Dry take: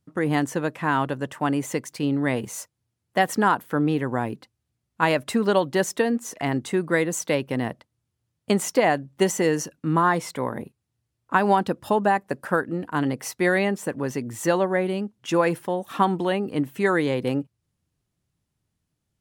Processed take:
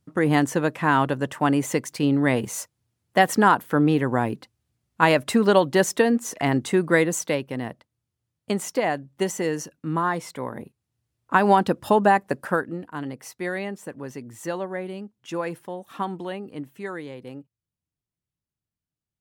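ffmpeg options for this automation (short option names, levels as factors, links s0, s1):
-af "volume=3.16,afade=t=out:st=7:d=0.47:silence=0.446684,afade=t=in:st=10.52:d=1.19:silence=0.446684,afade=t=out:st=12.23:d=0.68:silence=0.281838,afade=t=out:st=16.23:d=0.9:silence=0.501187"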